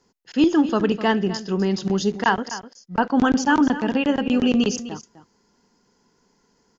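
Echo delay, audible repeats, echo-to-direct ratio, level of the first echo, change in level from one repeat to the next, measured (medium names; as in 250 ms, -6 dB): 253 ms, 1, -14.0 dB, -14.0 dB, no regular repeats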